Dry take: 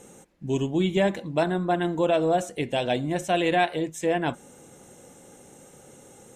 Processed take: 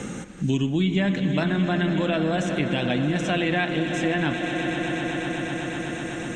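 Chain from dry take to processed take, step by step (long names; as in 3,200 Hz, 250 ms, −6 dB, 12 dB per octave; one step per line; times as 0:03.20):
flat-topped bell 600 Hz −9.5 dB
echo that builds up and dies away 124 ms, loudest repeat 5, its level −16 dB
in parallel at +2 dB: brickwall limiter −24 dBFS, peak gain reduction 9.5 dB
on the sum: high-frequency loss of the air 110 metres
on a send at −14 dB: convolution reverb RT60 4.1 s, pre-delay 50 ms
on the sum: multiband upward and downward compressor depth 70%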